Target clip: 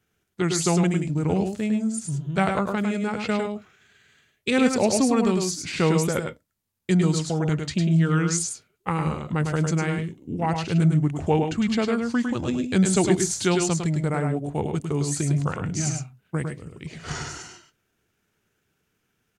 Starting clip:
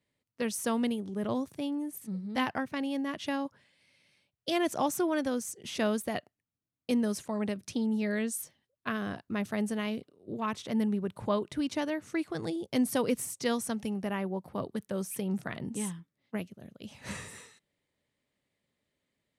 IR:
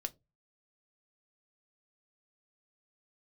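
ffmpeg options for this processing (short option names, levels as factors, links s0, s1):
-filter_complex "[0:a]highshelf=f=12000:g=6.5,asetrate=33038,aresample=44100,atempo=1.33484,asplit=2[s0][s1];[1:a]atrim=start_sample=2205,atrim=end_sample=3528,adelay=104[s2];[s1][s2]afir=irnorm=-1:irlink=0,volume=0.668[s3];[s0][s3]amix=inputs=2:normalize=0,volume=2.51"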